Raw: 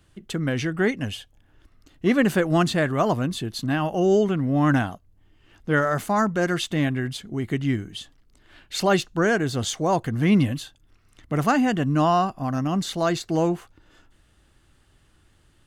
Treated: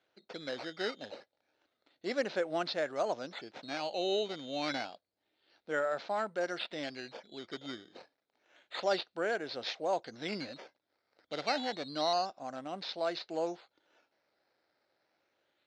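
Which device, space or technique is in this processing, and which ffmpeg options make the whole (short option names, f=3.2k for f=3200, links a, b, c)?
circuit-bent sampling toy: -filter_complex "[0:a]acrusher=samples=9:mix=1:aa=0.000001:lfo=1:lforange=9:lforate=0.29,highpass=520,equalizer=f=550:t=q:w=4:g=5,equalizer=f=1.1k:t=q:w=4:g=-9,equalizer=f=1.8k:t=q:w=4:g=-4,equalizer=f=2.8k:t=q:w=4:g=-4,equalizer=f=4.1k:t=q:w=4:g=7,lowpass=f=4.9k:w=0.5412,lowpass=f=4.9k:w=1.3066,asettb=1/sr,asplit=3[a][b][c];[a]atrim=end=4.574[d];[b]atrim=start=4.57:end=6.31,asetpts=PTS-STARTPTS,afade=t=in:d=0.004:c=qsin,afade=t=out:st=1.736:d=0.004:c=qsin,lowpass=9.1k[e];[c]atrim=start=6.306[f];[d][e]acrossfade=d=0.004:c1=hsin:c2=qsin[g];[g][f]acrossfade=d=0.004:c1=qsin:c2=hsin,volume=-8.5dB"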